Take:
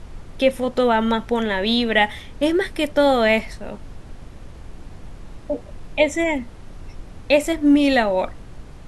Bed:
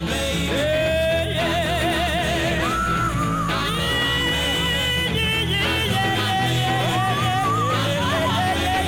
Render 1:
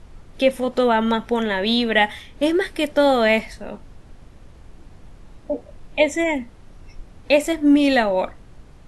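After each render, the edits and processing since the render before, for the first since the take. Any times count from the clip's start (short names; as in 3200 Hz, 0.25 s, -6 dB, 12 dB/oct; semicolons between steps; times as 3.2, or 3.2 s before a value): noise print and reduce 6 dB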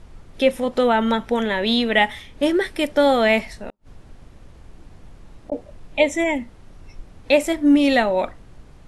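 3.57–5.52 flipped gate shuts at -22 dBFS, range -41 dB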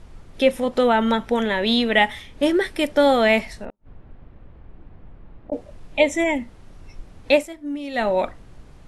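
3.65–5.53 air absorption 480 m; 7.34–8.07 dip -14.5 dB, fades 0.14 s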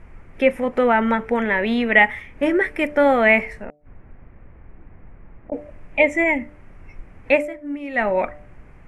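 resonant high shelf 2900 Hz -9.5 dB, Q 3; de-hum 148.2 Hz, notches 5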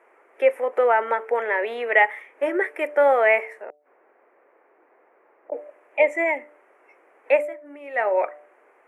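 steep high-pass 390 Hz 36 dB/oct; bell 4500 Hz -15 dB 1.4 oct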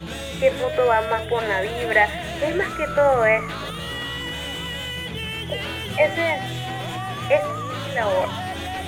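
add bed -8.5 dB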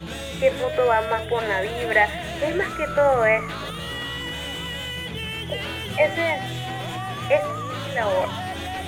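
gain -1 dB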